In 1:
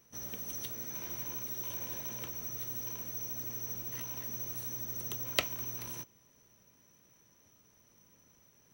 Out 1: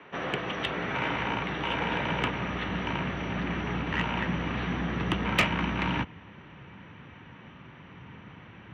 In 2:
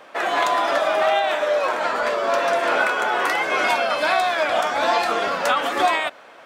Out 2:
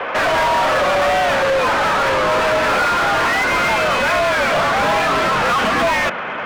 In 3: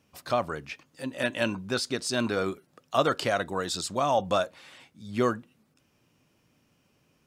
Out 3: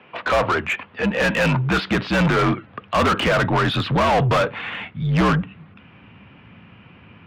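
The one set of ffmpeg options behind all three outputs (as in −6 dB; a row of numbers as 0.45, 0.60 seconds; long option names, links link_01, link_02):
-filter_complex "[0:a]highpass=frequency=150:width_type=q:width=0.5412,highpass=frequency=150:width_type=q:width=1.307,lowpass=frequency=3200:width_type=q:width=0.5176,lowpass=frequency=3200:width_type=q:width=0.7071,lowpass=frequency=3200:width_type=q:width=1.932,afreqshift=-58,asubboost=boost=8.5:cutoff=160,asplit=2[link_01][link_02];[link_02]highpass=frequency=720:poles=1,volume=34dB,asoftclip=type=tanh:threshold=-8dB[link_03];[link_01][link_03]amix=inputs=2:normalize=0,lowpass=frequency=2400:poles=1,volume=-6dB,volume=-1.5dB"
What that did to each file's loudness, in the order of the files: +7.0, +4.5, +9.0 LU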